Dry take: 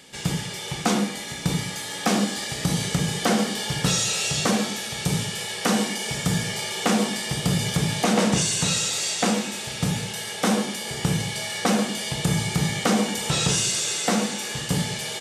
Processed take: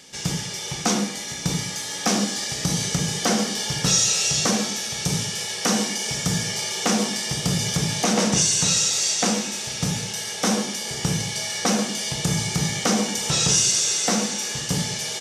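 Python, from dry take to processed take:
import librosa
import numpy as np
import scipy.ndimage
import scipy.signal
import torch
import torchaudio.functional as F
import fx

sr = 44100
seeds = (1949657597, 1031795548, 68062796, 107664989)

y = fx.peak_eq(x, sr, hz=5800.0, db=10.0, octaves=0.55)
y = y * librosa.db_to_amplitude(-1.0)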